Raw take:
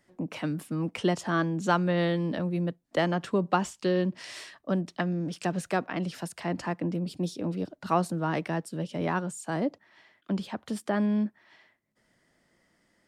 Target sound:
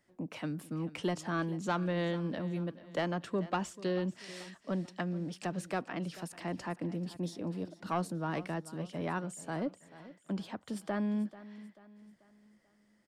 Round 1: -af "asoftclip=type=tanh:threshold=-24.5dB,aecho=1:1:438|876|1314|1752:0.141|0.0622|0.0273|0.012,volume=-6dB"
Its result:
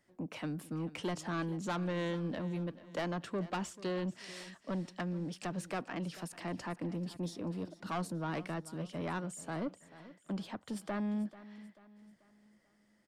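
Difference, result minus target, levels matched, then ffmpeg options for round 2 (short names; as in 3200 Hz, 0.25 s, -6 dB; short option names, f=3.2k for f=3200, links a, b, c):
soft clip: distortion +9 dB
-af "asoftclip=type=tanh:threshold=-16dB,aecho=1:1:438|876|1314|1752:0.141|0.0622|0.0273|0.012,volume=-6dB"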